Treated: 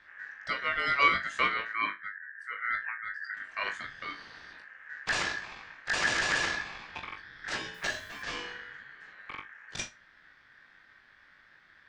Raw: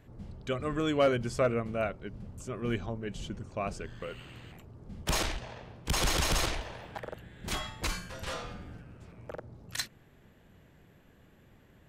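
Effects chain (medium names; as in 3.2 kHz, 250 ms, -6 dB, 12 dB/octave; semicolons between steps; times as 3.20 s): 1.73–3.34 s: resonances exaggerated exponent 2; low-pass 5.3 kHz 24 dB/octave; flutter echo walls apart 3.4 m, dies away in 0.21 s; ring modulator 1.7 kHz; 7.74–8.23 s: word length cut 10-bit, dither none; trim +1.5 dB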